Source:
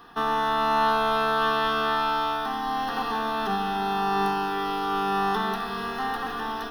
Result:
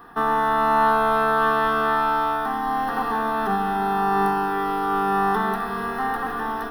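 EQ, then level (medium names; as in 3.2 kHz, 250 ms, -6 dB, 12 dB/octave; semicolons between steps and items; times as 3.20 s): high-order bell 4.2 kHz -10.5 dB; +4.0 dB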